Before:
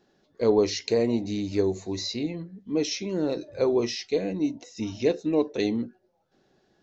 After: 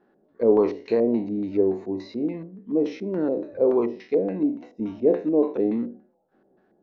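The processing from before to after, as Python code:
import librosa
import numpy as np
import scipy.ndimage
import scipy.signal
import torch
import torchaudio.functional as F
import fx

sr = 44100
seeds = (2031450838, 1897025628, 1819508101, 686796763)

y = fx.spec_trails(x, sr, decay_s=0.4)
y = fx.filter_lfo_lowpass(y, sr, shape='square', hz=3.5, low_hz=610.0, high_hz=1500.0, q=1.2)
y = fx.low_shelf_res(y, sr, hz=160.0, db=-7.0, q=1.5)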